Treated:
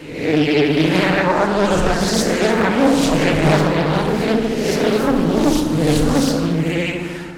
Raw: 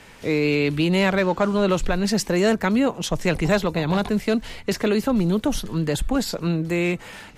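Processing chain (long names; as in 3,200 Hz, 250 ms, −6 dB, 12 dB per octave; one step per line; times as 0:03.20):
peak hold with a rise ahead of every peak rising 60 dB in 0.81 s
on a send: backwards echo 759 ms −22 dB
on the sum: feedback delay network reverb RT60 1.7 s, low-frequency decay 1.4×, high-frequency decay 0.5×, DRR 0.5 dB
pitch vibrato 14 Hz 72 cents
highs frequency-modulated by the lows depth 0.57 ms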